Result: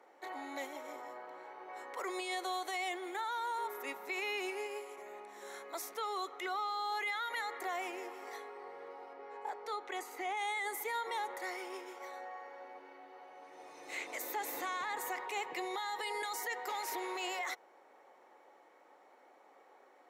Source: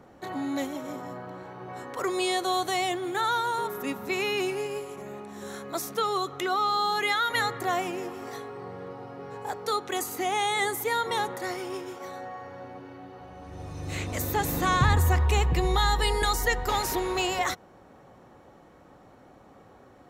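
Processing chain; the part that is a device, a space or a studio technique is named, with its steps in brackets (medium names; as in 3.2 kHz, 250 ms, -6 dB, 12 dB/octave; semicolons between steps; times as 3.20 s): laptop speaker (high-pass 370 Hz 24 dB/octave; peaking EQ 880 Hz +6 dB 0.25 oct; peaking EQ 2.1 kHz +9 dB 0.31 oct; peak limiter -21.5 dBFS, peak gain reduction 11 dB); 9.13–10.37 s: low-pass 3.3 kHz 6 dB/octave; trim -8.5 dB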